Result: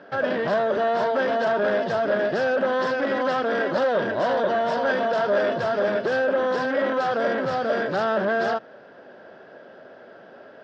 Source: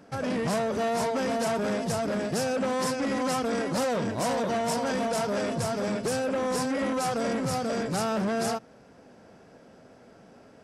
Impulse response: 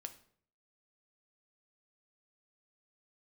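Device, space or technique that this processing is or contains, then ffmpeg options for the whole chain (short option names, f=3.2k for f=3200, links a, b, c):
overdrive pedal into a guitar cabinet: -filter_complex "[0:a]asplit=2[a][b];[b]highpass=f=720:p=1,volume=11dB,asoftclip=type=tanh:threshold=-18dB[c];[a][c]amix=inputs=2:normalize=0,lowpass=f=5.6k:p=1,volume=-6dB,highpass=90,equalizer=f=370:t=q:w=4:g=7,equalizer=f=590:t=q:w=4:g=9,equalizer=f=1.6k:t=q:w=4:g=9,equalizer=f=2.3k:t=q:w=4:g=-6,equalizer=f=3.3k:t=q:w=4:g=3,lowpass=f=4.1k:w=0.5412,lowpass=f=4.1k:w=1.3066"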